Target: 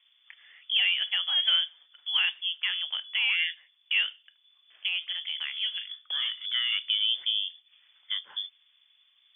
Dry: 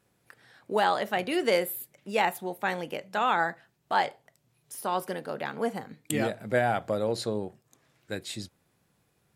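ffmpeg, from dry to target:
-filter_complex "[0:a]asplit=2[s0][s1];[s1]acompressor=threshold=0.0126:ratio=6,volume=1.26[s2];[s0][s2]amix=inputs=2:normalize=0,asoftclip=type=tanh:threshold=0.266,lowpass=f=3100:t=q:w=0.5098,lowpass=f=3100:t=q:w=0.6013,lowpass=f=3100:t=q:w=0.9,lowpass=f=3100:t=q:w=2.563,afreqshift=-3600,aderivative,asettb=1/sr,asplit=3[s3][s4][s5];[s3]atrim=end=4.884[s6];[s4]atrim=start=4.88:end=6.72,asetpts=PTS-STARTPTS,afade=t=in:d=0.004:c=qsin,afade=t=out:st=1.836:d=0.004:c=qsin,acrossover=split=2800[s7][s8];[s8]acompressor=threshold=0.01:ratio=4:attack=1:release=60[s9];[s7][s9]amix=inputs=2:normalize=0[s10];[s5]atrim=start=6.716[s11];[s6][s10]acrossfade=d=0.004:c1=hsin:c2=qsin[s12];[s12][s11]acrossfade=d=0.004:c1=qsin:c2=hsin,volume=2.11"

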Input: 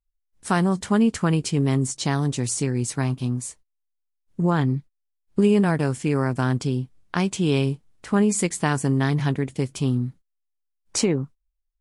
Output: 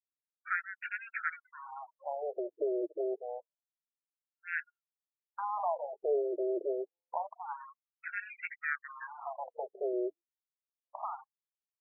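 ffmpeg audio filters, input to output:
-filter_complex "[0:a]lowshelf=f=140:t=q:w=3:g=7,asplit=2[s0][s1];[s1]alimiter=limit=0.168:level=0:latency=1:release=36,volume=1.19[s2];[s0][s2]amix=inputs=2:normalize=0,equalizer=f=2000:w=4.9:g=-4.5,aresample=8000,volume=7.08,asoftclip=hard,volume=0.141,aresample=44100,afftfilt=real='re*gte(hypot(re,im),0.0224)':imag='im*gte(hypot(re,im),0.0224)':win_size=1024:overlap=0.75,afftfilt=real='re*between(b*sr/1024,460*pow(2000/460,0.5+0.5*sin(2*PI*0.27*pts/sr))/1.41,460*pow(2000/460,0.5+0.5*sin(2*PI*0.27*pts/sr))*1.41)':imag='im*between(b*sr/1024,460*pow(2000/460,0.5+0.5*sin(2*PI*0.27*pts/sr))/1.41,460*pow(2000/460,0.5+0.5*sin(2*PI*0.27*pts/sr))*1.41)':win_size=1024:overlap=0.75,volume=0.75"

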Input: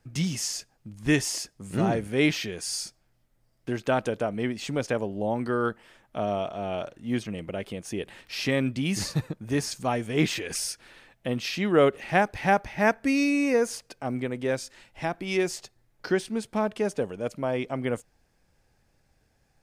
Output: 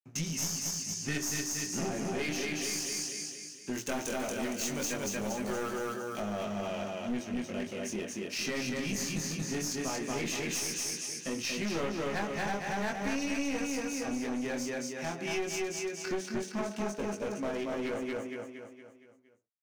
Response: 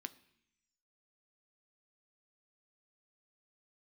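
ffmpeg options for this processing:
-filter_complex "[0:a]acontrast=62,aeval=exprs='sgn(val(0))*max(abs(val(0))-0.00891,0)':c=same,asettb=1/sr,asplit=3[s0][s1][s2];[s0]atrim=end=3.734[s3];[s1]atrim=start=3.73:end=6.2,asetpts=PTS-STARTPTS,afade=t=in:d=0.004:c=qsin,afade=t=out:st=2.466:d=0.004:c=qsin,aemphasis=mode=production:type=75fm[s4];[s2]atrim=start=6.196[s5];[s3][s4]acrossfade=d=0.004:c1=hsin:c2=qsin[s6];[s6][s5]acrossfade=d=0.004:c1=qsin:c2=hsin,flanger=delay=18.5:depth=6.1:speed=0.17,equalizer=f=6200:t=o:w=0.38:g=10,bandreject=f=3400:w=20,aecho=1:1:232|464|696|928|1160|1392:0.708|0.347|0.17|0.0833|0.0408|0.02[s7];[1:a]atrim=start_sample=2205,atrim=end_sample=6174,asetrate=48510,aresample=44100[s8];[s7][s8]afir=irnorm=-1:irlink=0,aeval=exprs='clip(val(0),-1,0.0316)':c=same,acompressor=threshold=0.0251:ratio=2.5"

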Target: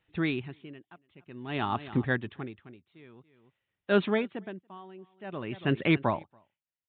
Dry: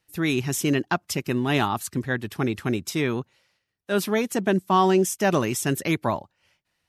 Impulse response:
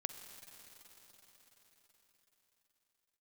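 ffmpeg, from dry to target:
-filter_complex "[0:a]asplit=2[s0][s1];[s1]aecho=0:1:283:0.0841[s2];[s0][s2]amix=inputs=2:normalize=0,aresample=8000,aresample=44100,aeval=exprs='val(0)*pow(10,-29*(0.5-0.5*cos(2*PI*0.51*n/s))/20)':c=same"

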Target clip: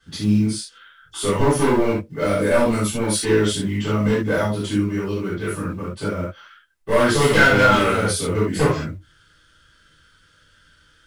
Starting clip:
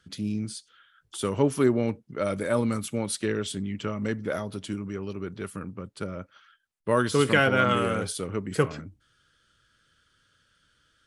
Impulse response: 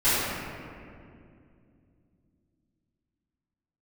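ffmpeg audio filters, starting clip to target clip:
-filter_complex "[0:a]asplit=2[s0][s1];[s1]acrusher=bits=4:mode=log:mix=0:aa=0.000001,volume=0.316[s2];[s0][s2]amix=inputs=2:normalize=0,asoftclip=type=hard:threshold=0.106[s3];[1:a]atrim=start_sample=2205,atrim=end_sample=4410[s4];[s3][s4]afir=irnorm=-1:irlink=0,volume=0.531"

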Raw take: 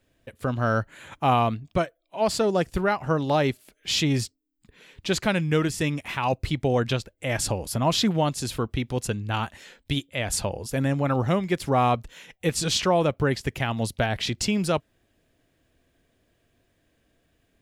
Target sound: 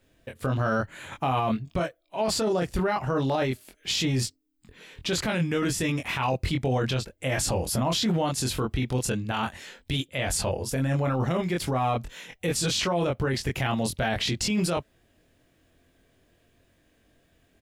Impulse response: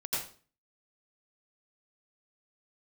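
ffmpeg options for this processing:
-filter_complex "[0:a]asplit=2[s0][s1];[s1]adelay=23,volume=0.631[s2];[s0][s2]amix=inputs=2:normalize=0,alimiter=limit=0.1:level=0:latency=1:release=11,volume=1.26"

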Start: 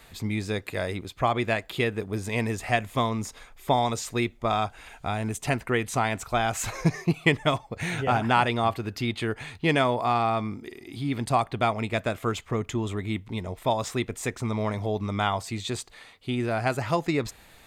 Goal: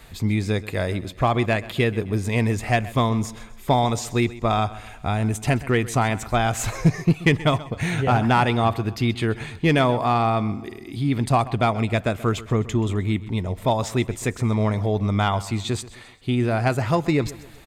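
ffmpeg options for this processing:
-filter_complex "[0:a]lowshelf=f=250:g=7,asplit=2[s0][s1];[s1]aeval=exprs='0.178*(abs(mod(val(0)/0.178+3,4)-2)-1)':c=same,volume=0.355[s2];[s0][s2]amix=inputs=2:normalize=0,aecho=1:1:130|260|390|520:0.126|0.0554|0.0244|0.0107"

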